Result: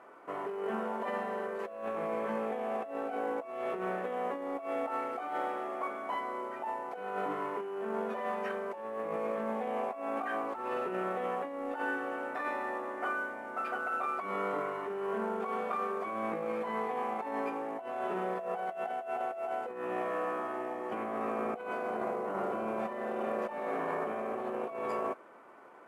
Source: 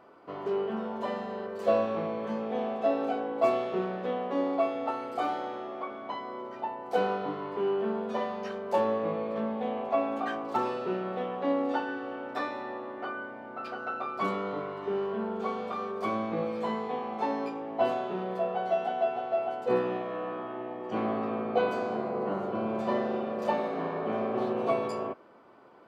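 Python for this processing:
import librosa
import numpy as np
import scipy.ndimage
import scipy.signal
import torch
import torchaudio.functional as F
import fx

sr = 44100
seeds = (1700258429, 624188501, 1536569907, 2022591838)

y = fx.cvsd(x, sr, bps=64000)
y = fx.highpass(y, sr, hz=430.0, slope=6)
y = fx.over_compress(y, sr, threshold_db=-36.0, ratio=-1.0)
y = fx.high_shelf_res(y, sr, hz=3000.0, db=-11.0, q=1.5)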